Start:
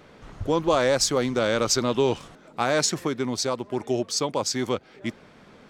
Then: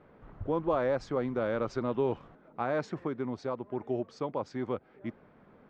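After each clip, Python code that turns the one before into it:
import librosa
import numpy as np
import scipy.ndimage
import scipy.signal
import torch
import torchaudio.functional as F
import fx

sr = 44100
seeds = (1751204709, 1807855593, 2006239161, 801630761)

y = scipy.signal.sosfilt(scipy.signal.butter(2, 1500.0, 'lowpass', fs=sr, output='sos'), x)
y = F.gain(torch.from_numpy(y), -7.0).numpy()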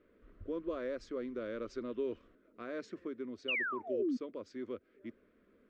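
y = fx.spec_paint(x, sr, seeds[0], shape='fall', start_s=3.48, length_s=0.69, low_hz=230.0, high_hz=3000.0, level_db=-26.0)
y = fx.fixed_phaser(y, sr, hz=340.0, stages=4)
y = F.gain(torch.from_numpy(y), -6.0).numpy()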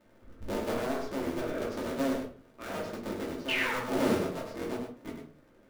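y = fx.cycle_switch(x, sr, every=3, mode='inverted')
y = y + 10.0 ** (-6.5 / 20.0) * np.pad(y, (int(100 * sr / 1000.0), 0))[:len(y)]
y = fx.room_shoebox(y, sr, seeds[1], volume_m3=240.0, walls='furnished', distance_m=2.6)
y = F.gain(torch.from_numpy(y), -1.0).numpy()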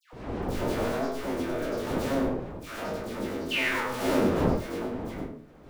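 y = fx.spec_trails(x, sr, decay_s=0.37)
y = fx.dmg_wind(y, sr, seeds[2], corner_hz=450.0, level_db=-37.0)
y = fx.dispersion(y, sr, late='lows', ms=129.0, hz=1500.0)
y = F.gain(torch.from_numpy(y), 1.5).numpy()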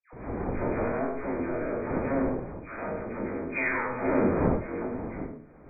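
y = fx.brickwall_lowpass(x, sr, high_hz=2500.0)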